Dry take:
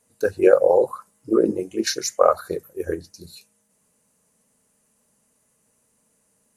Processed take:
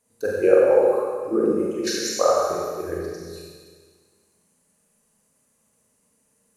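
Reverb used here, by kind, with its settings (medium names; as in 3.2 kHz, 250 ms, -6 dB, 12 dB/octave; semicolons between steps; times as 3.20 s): Schroeder reverb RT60 1.7 s, combs from 32 ms, DRR -4 dB; trim -5.5 dB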